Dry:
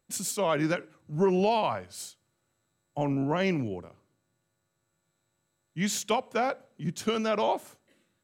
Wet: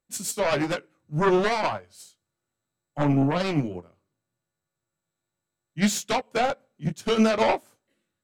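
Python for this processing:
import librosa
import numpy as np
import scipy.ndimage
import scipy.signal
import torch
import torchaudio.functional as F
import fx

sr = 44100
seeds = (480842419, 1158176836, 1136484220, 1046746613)

y = fx.fold_sine(x, sr, drive_db=9, ceiling_db=-14.0)
y = fx.chorus_voices(y, sr, voices=2, hz=0.65, base_ms=18, depth_ms=4.9, mix_pct=30)
y = fx.upward_expand(y, sr, threshold_db=-30.0, expansion=2.5)
y = y * 10.0 ** (1.5 / 20.0)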